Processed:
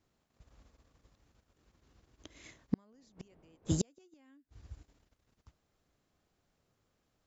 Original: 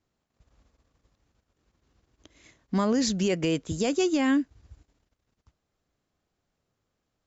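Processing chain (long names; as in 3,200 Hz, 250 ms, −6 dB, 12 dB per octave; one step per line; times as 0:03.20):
0:02.92–0:03.85: wind on the microphone 440 Hz −33 dBFS
gate with flip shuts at −19 dBFS, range −41 dB
level +1.5 dB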